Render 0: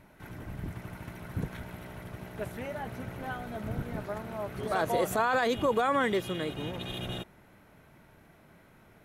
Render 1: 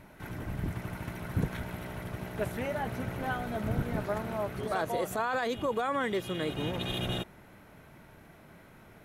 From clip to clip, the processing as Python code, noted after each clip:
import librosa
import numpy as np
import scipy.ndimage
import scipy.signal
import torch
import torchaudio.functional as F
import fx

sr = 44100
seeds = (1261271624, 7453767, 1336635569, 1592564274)

y = fx.rider(x, sr, range_db=4, speed_s=0.5)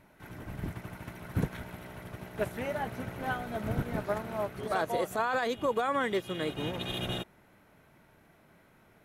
y = fx.low_shelf(x, sr, hz=160.0, db=-4.0)
y = fx.upward_expand(y, sr, threshold_db=-45.0, expansion=1.5)
y = F.gain(torch.from_numpy(y), 2.5).numpy()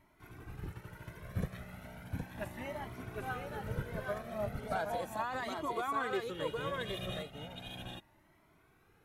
y = x + 10.0 ** (-3.5 / 20.0) * np.pad(x, (int(766 * sr / 1000.0), 0))[:len(x)]
y = fx.comb_cascade(y, sr, direction='rising', hz=0.36)
y = F.gain(torch.from_numpy(y), -2.5).numpy()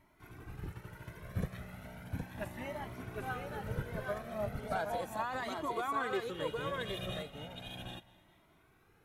y = fx.echo_feedback(x, sr, ms=212, feedback_pct=52, wet_db=-21.0)